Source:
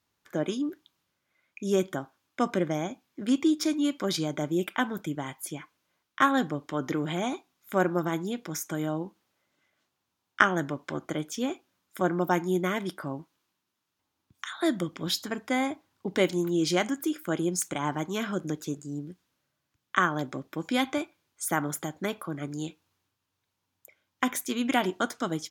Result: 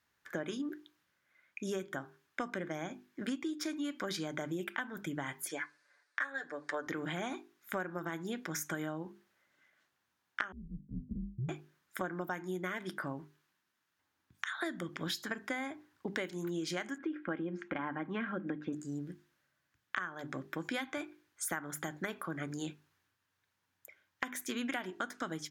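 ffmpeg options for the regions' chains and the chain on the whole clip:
ffmpeg -i in.wav -filter_complex "[0:a]asettb=1/sr,asplit=3[link_01][link_02][link_03];[link_01]atrim=end=5.494[link_04];[link_02]atrim=start=5.49:end=6.87,asetpts=PTS-STARTPTS,afade=type=in:duration=0.004:curve=qsin,afade=type=out:start_time=1.376:duration=0.004:curve=qsin,highpass=440,equalizer=frequency=510:width_type=q:width=4:gain=7,equalizer=frequency=1700:width_type=q:width=4:gain=7,equalizer=frequency=3000:width_type=q:width=4:gain=-7,equalizer=frequency=4500:width_type=q:width=4:gain=7,equalizer=frequency=8800:width_type=q:width=4:gain=5,lowpass=frequency=9800:width=0.5412,lowpass=frequency=9800:width=1.3066,aecho=1:1:6.9:0.79,atrim=end_sample=60858[link_05];[link_03]atrim=start=6.866[link_06];[link_04][link_05]acrossfade=duration=0.004:curve1=hsin:curve2=qsin[link_07];[link_07][link_06]acrossfade=duration=0.004:curve1=qsin:curve2=hsin,asettb=1/sr,asplit=3[link_08][link_09][link_10];[link_08]atrim=end=10.524[link_11];[link_09]atrim=start=10.52:end=11.49,asetpts=PTS-STARTPTS,afade=type=in:duration=0.004:curve=qsin,afade=type=out:start_time=0.966:duration=0.004:curve=qsin,asuperpass=centerf=220:order=8:qfactor=0.99,afreqshift=-110[link_12];[link_10]atrim=start=11.486[link_13];[link_11][link_12]acrossfade=duration=0.004:curve1=hsin:curve2=qsin[link_14];[link_14][link_13]acrossfade=duration=0.004:curve1=qsin:curve2=hsin,asettb=1/sr,asplit=3[link_15][link_16][link_17];[link_15]atrim=end=16.984[link_18];[link_16]atrim=start=16.98:end=18.73,asetpts=PTS-STARTPTS,afade=type=in:duration=0.004:curve=qsin,afade=type=out:start_time=1.746:duration=0.004:curve=qsin,lowpass=frequency=2700:width=0.5412,lowpass=frequency=2700:width=1.3066,equalizer=frequency=240:width_type=o:width=1.7:gain=4,aecho=1:1:3.7:0.34,atrim=end_sample=77175[link_19];[link_17]atrim=start=18.726[link_20];[link_18][link_19]acrossfade=duration=0.004:curve1=hsin:curve2=qsin[link_21];[link_21][link_20]acrossfade=duration=0.004:curve1=qsin:curve2=hsin,equalizer=frequency=1700:width_type=o:width=0.7:gain=10,bandreject=frequency=50:width_type=h:width=6,bandreject=frequency=100:width_type=h:width=6,bandreject=frequency=150:width_type=h:width=6,bandreject=frequency=200:width_type=h:width=6,bandreject=frequency=250:width_type=h:width=6,bandreject=frequency=300:width_type=h:width=6,bandreject=frequency=350:width_type=h:width=6,bandreject=frequency=400:width_type=h:width=6,acompressor=threshold=-31dB:ratio=16,volume=-2.5dB" out.wav

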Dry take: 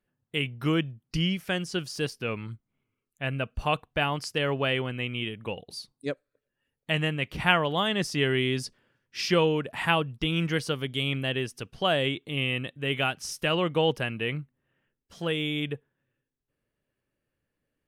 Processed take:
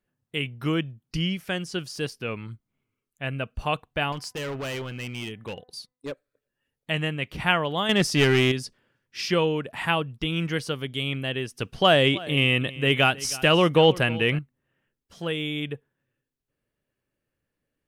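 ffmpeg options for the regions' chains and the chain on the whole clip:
ffmpeg -i in.wav -filter_complex "[0:a]asettb=1/sr,asplit=3[link_01][link_02][link_03];[link_01]atrim=end=4.124[link_04];[link_02]atrim=start=4.12:end=6.12,asetpts=PTS-STARTPTS,afade=type=in:duration=0.004:curve=qsin,afade=type=out:start_time=1.996:duration=0.004:curve=qsin,agate=range=-15dB:threshold=-48dB:ratio=16:release=100:detection=peak,asoftclip=type=hard:threshold=-29dB,bandreject=frequency=251.3:width_type=h:width=4,bandreject=frequency=502.6:width_type=h:width=4,bandreject=frequency=753.9:width_type=h:width=4,bandreject=frequency=1005.2:width_type=h:width=4,bandreject=frequency=1256.5:width_type=h:width=4,bandreject=frequency=1507.8:width_type=h:width=4,bandreject=frequency=1759.1:width_type=h:width=4,bandreject=frequency=2010.4:width_type=h:width=4[link_05];[link_03]atrim=start=6.116[link_06];[link_04][link_05]acrossfade=duration=0.004:curve1=hsin:curve2=qsin[link_07];[link_07][link_06]acrossfade=duration=0.004:curve1=qsin:curve2=hsin,asettb=1/sr,asplit=3[link_08][link_09][link_10];[link_08]atrim=end=7.894[link_11];[link_09]atrim=start=7.89:end=8.52,asetpts=PTS-STARTPTS,afade=type=in:duration=0.004:curve=qsin,afade=type=out:start_time=0.626:duration=0.004:curve=qsin,acontrast=80,aeval=exprs='clip(val(0),-1,0.119)':channel_layout=same[link_12];[link_10]atrim=start=8.516[link_13];[link_11][link_12]acrossfade=duration=0.004:curve1=hsin:curve2=qsin[link_14];[link_14][link_13]acrossfade=duration=0.004:curve1=qsin:curve2=hsin,asettb=1/sr,asplit=3[link_15][link_16][link_17];[link_15]atrim=end=11.604[link_18];[link_16]atrim=start=11.6:end=14.39,asetpts=PTS-STARTPTS,afade=type=in:duration=0.004:curve=qsin,afade=type=out:start_time=2.786:duration=0.004:curve=qsin,acontrast=87,aecho=1:1:317:0.112,atrim=end_sample=123039[link_19];[link_17]atrim=start=14.386[link_20];[link_18][link_19]acrossfade=duration=0.004:curve1=hsin:curve2=qsin[link_21];[link_21][link_20]acrossfade=duration=0.004:curve1=qsin:curve2=hsin" out.wav

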